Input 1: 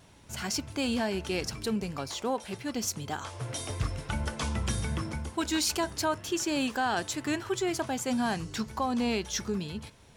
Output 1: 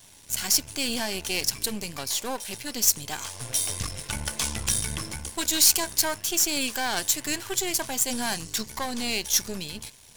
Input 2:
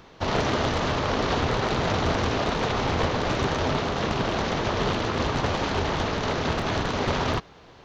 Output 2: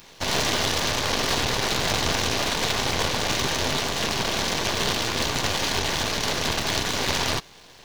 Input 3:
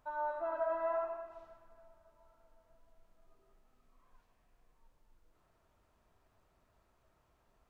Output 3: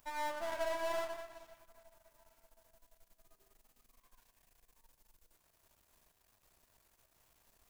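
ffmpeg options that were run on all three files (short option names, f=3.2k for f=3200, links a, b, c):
-af "aeval=exprs='if(lt(val(0),0),0.251*val(0),val(0))':c=same,crystalizer=i=6:c=0,bandreject=f=1.3k:w=11"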